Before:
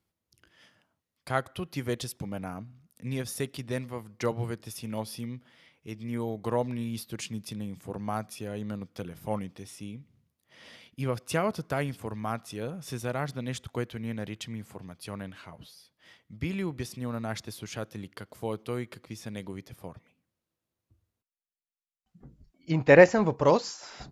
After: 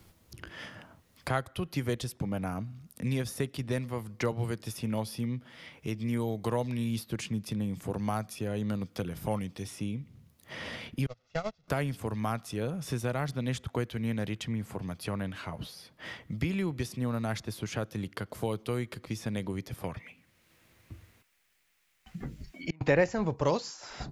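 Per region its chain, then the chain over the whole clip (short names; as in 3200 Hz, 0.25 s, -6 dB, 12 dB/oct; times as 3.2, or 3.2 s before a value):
11.06–11.68 delta modulation 32 kbps, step -32.5 dBFS + gate -25 dBFS, range -40 dB + comb 1.5 ms, depth 58%
19.84–22.81 bell 2100 Hz +11 dB 1.1 oct + flipped gate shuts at -23 dBFS, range -35 dB
whole clip: low shelf 88 Hz +8.5 dB; three-band squash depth 70%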